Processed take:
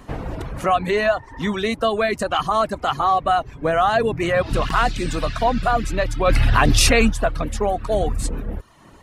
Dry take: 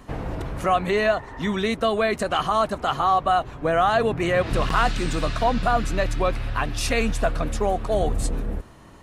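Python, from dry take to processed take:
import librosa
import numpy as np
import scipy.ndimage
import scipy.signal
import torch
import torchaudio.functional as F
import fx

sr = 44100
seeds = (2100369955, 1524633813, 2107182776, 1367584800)

y = fx.dereverb_blind(x, sr, rt60_s=0.63)
y = fx.env_flatten(y, sr, amount_pct=100, at=(6.25, 7.08), fade=0.02)
y = y * 10.0 ** (2.5 / 20.0)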